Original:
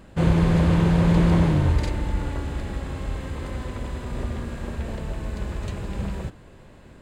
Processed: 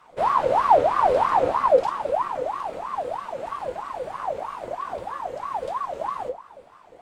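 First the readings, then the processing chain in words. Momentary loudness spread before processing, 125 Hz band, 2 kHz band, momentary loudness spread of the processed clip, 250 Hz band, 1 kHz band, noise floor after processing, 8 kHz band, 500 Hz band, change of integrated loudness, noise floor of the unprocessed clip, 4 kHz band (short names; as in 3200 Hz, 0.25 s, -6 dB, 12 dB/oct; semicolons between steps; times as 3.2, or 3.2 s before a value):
14 LU, -24.5 dB, -1.0 dB, 14 LU, -17.5 dB, +14.0 dB, -51 dBFS, n/a, +8.5 dB, 0.0 dB, -47 dBFS, -4.5 dB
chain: wow and flutter 120 cents; frequency shift -89 Hz; shoebox room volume 310 m³, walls furnished, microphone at 1.1 m; ring modulator with a swept carrier 820 Hz, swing 40%, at 3.1 Hz; gain -3.5 dB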